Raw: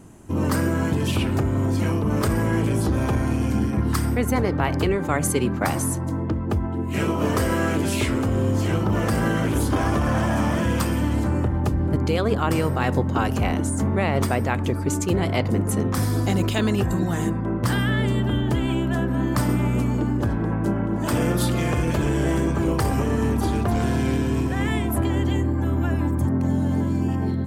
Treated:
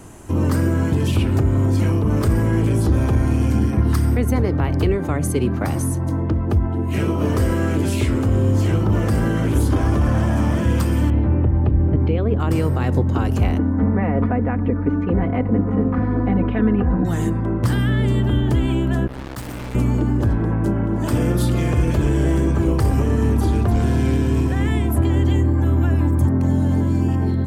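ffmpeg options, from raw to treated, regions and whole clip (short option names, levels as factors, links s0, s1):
-filter_complex "[0:a]asettb=1/sr,asplit=3[s0][s1][s2];[s0]atrim=end=3.724[s3];[s1]atrim=start=3.72:end=7.37,asetpts=PTS-STARTPTS,afade=t=in:d=0.004:c=qsin,afade=t=out:st=3.646:d=0.004:c=qsin,bandreject=f=7400:w=9.9,aeval=exprs='val(0)+0.00562*sin(2*PI*680*n/s)':c=same[s4];[s2]atrim=start=7.366[s5];[s3][s4]acrossfade=d=0.004:c1=hsin:c2=qsin[s6];[s6][s5]acrossfade=d=0.004:c1=qsin:c2=hsin,asettb=1/sr,asplit=3[s7][s8][s9];[s7]atrim=end=11.104[s10];[s8]atrim=start=11.1:end=12.4,asetpts=PTS-STARTPTS,afade=t=in:d=0.004:c=qsin,afade=t=out:st=1.296:d=0.004:c=qsin,lowpass=f=2700:w=0.5412,lowpass=f=2700:w=1.3066,equalizer=f=1400:t=o:w=1.7:g=-7[s11];[s9]atrim=start=12.396[s12];[s10][s11]acrossfade=d=0.004:c1=hsin:c2=qsin[s13];[s13][s12]acrossfade=d=0.004:c1=qsin:c2=hsin,asettb=1/sr,asplit=3[s14][s15][s16];[s14]atrim=end=13.584[s17];[s15]atrim=start=13.58:end=17.05,asetpts=PTS-STARTPTS,afade=t=in:d=0.004:c=qsin,afade=t=out:st=3.466:d=0.004:c=qsin,lowpass=f=2000:w=0.5412,lowpass=f=2000:w=1.3066,aecho=1:1:4.1:0.76,atrim=end_sample=153027[s18];[s16]atrim=start=17.046[s19];[s17][s18]acrossfade=d=0.004:c1=hsin:c2=qsin[s20];[s20][s19]acrossfade=d=0.004:c1=qsin:c2=hsin,asettb=1/sr,asplit=3[s21][s22][s23];[s21]atrim=end=19.074[s24];[s22]atrim=start=19.07:end=19.75,asetpts=PTS-STARTPTS,afade=t=in:d=0.004:c=qsin,afade=t=out:st=0.676:d=0.004:c=qsin,acrusher=bits=2:mix=0:aa=0.5,asoftclip=type=hard:threshold=0.0422[s25];[s23]atrim=start=19.746[s26];[s24][s25]acrossfade=d=0.004:c1=hsin:c2=qsin[s27];[s27][s26]acrossfade=d=0.004:c1=qsin:c2=hsin,equalizer=f=190:t=o:w=1.6:g=-7,acrossover=split=370[s28][s29];[s29]acompressor=threshold=0.00447:ratio=2[s30];[s28][s30]amix=inputs=2:normalize=0,volume=2.82"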